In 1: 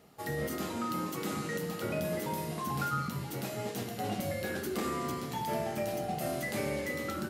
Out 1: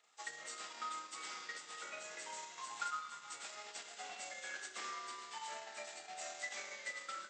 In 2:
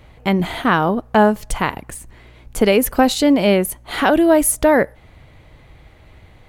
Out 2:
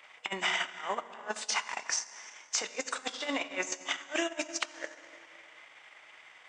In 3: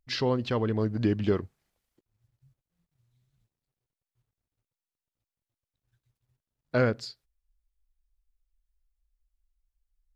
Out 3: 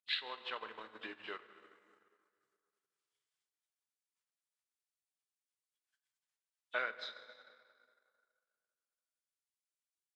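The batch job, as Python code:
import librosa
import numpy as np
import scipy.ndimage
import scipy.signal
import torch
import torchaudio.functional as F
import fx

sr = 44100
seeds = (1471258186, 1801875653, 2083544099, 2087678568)

p1 = fx.freq_compress(x, sr, knee_hz=2500.0, ratio=1.5)
p2 = scipy.signal.sosfilt(scipy.signal.butter(2, 1300.0, 'highpass', fs=sr, output='sos'), p1)
p3 = fx.over_compress(p2, sr, threshold_db=-32.0, ratio=-0.5)
p4 = p3 + fx.echo_single(p3, sr, ms=306, db=-22.0, dry=0)
p5 = fx.rev_plate(p4, sr, seeds[0], rt60_s=2.2, hf_ratio=0.7, predelay_ms=0, drr_db=5.0)
p6 = fx.transient(p5, sr, attack_db=5, sustain_db=-9)
y = p6 * 10.0 ** (-5.0 / 20.0)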